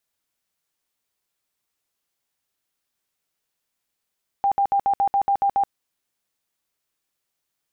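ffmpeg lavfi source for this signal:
-f lavfi -i "aevalsrc='0.158*sin(2*PI*797*mod(t,0.14))*lt(mod(t,0.14),61/797)':d=1.26:s=44100"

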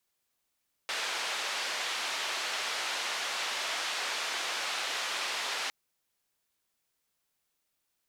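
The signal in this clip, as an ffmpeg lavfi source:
-f lavfi -i "anoisesrc=c=white:d=4.81:r=44100:seed=1,highpass=f=620,lowpass=f=4100,volume=-21.5dB"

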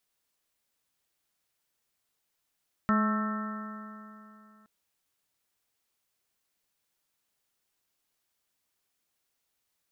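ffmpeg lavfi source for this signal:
-f lavfi -i "aevalsrc='0.0708*pow(10,-3*t/2.91)*sin(2*PI*212.23*t)+0.01*pow(10,-3*t/2.91)*sin(2*PI*425.86*t)+0.0168*pow(10,-3*t/2.91)*sin(2*PI*642.27*t)+0.00891*pow(10,-3*t/2.91)*sin(2*PI*862.8*t)+0.0224*pow(10,-3*t/2.91)*sin(2*PI*1088.76*t)+0.0501*pow(10,-3*t/2.91)*sin(2*PI*1321.41*t)+0.00891*pow(10,-3*t/2.91)*sin(2*PI*1561.94*t)+0.0168*pow(10,-3*t/2.91)*sin(2*PI*1811.47*t)':d=1.77:s=44100"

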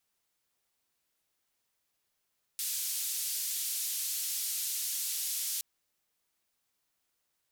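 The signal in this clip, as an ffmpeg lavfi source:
-f lavfi -i "anoisesrc=c=white:d=3.02:r=44100:seed=1,highpass=f=4200,lowpass=f=15000,volume=-26.4dB"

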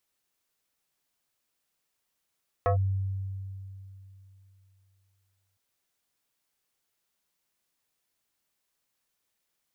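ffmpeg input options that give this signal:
-f lavfi -i "aevalsrc='0.1*pow(10,-3*t/3.08)*sin(2*PI*96.5*t+1.8*clip(1-t/0.11,0,1)*sin(2*PI*6.21*96.5*t))':d=2.91:s=44100"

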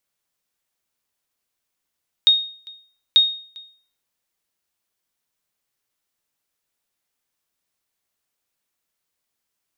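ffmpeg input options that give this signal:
-f lavfi -i "aevalsrc='0.473*(sin(2*PI*3720*mod(t,0.89))*exp(-6.91*mod(t,0.89)/0.47)+0.0501*sin(2*PI*3720*max(mod(t,0.89)-0.4,0))*exp(-6.91*max(mod(t,0.89)-0.4,0)/0.47))':d=1.78:s=44100"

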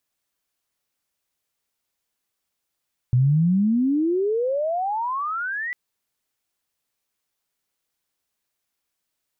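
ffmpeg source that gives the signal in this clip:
-f lavfi -i "aevalsrc='pow(10,(-14-11.5*t/2.6)/20)*sin(2*PI*120*2.6/log(2000/120)*(exp(log(2000/120)*t/2.6)-1))':d=2.6:s=44100"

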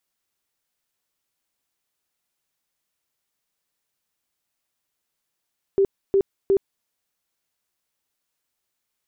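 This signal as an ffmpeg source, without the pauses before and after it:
-f lavfi -i "aevalsrc='0.2*sin(2*PI*392*mod(t,0.36))*lt(mod(t,0.36),27/392)':d=1.08:s=44100"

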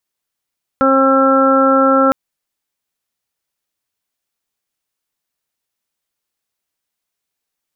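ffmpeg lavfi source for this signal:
-f lavfi -i "aevalsrc='0.2*sin(2*PI*268*t)+0.224*sin(2*PI*536*t)+0.0794*sin(2*PI*804*t)+0.0562*sin(2*PI*1072*t)+0.237*sin(2*PI*1340*t)+0.0299*sin(2*PI*1608*t)':d=1.31:s=44100"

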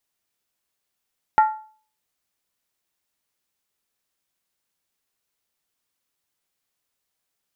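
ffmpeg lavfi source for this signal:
-f lavfi -i "aevalsrc='0.355*pow(10,-3*t/0.44)*sin(2*PI*866*t)+0.119*pow(10,-3*t/0.349)*sin(2*PI*1380.4*t)+0.0398*pow(10,-3*t/0.301)*sin(2*PI*1849.8*t)+0.0133*pow(10,-3*t/0.29)*sin(2*PI*1988.3*t)+0.00447*pow(10,-3*t/0.27)*sin(2*PI*2297.5*t)':d=0.63:s=44100"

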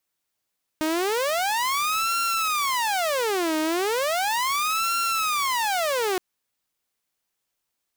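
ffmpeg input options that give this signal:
-f lavfi -i "aevalsrc='0.106*(2*mod((840.5*t-529.5/(2*PI*0.36)*sin(2*PI*0.36*t)),1)-1)':d=5.37:s=44100"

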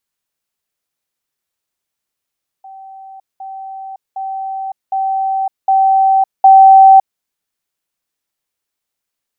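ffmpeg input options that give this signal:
-f lavfi -i "aevalsrc='pow(10,(-31.5+6*floor(t/0.76))/20)*sin(2*PI*772*t)*clip(min(mod(t,0.76),0.56-mod(t,0.76))/0.005,0,1)':d=4.56:s=44100"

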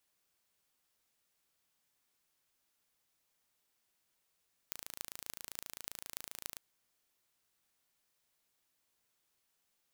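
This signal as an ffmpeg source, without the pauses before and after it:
-f lavfi -i "aevalsrc='0.282*eq(mod(n,1598),0)*(0.5+0.5*eq(mod(n,12784),0))':d=1.87:s=44100"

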